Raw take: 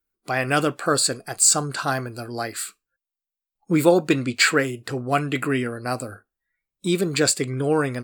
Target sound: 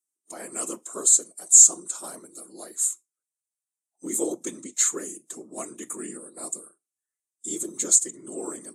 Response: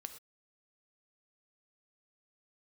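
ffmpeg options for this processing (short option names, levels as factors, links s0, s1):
-filter_complex "[0:a]acrossover=split=900[s0][s1];[s0]crystalizer=i=9.5:c=0[s2];[s2][s1]amix=inputs=2:normalize=0,afftfilt=real='hypot(re,im)*cos(2*PI*random(0))':imag='hypot(re,im)*sin(2*PI*random(1))':win_size=512:overlap=0.75,aexciter=amount=13.7:drive=9.6:freq=7000,asetrate=40517,aresample=44100,highpass=f=200:w=0.5412,highpass=f=200:w=1.3066,equalizer=f=340:t=q:w=4:g=8,equalizer=f=1500:t=q:w=4:g=-6,equalizer=f=2400:t=q:w=4:g=-6,equalizer=f=3800:t=q:w=4:g=7,lowpass=f=9200:w=0.5412,lowpass=f=9200:w=1.3066,volume=0.266"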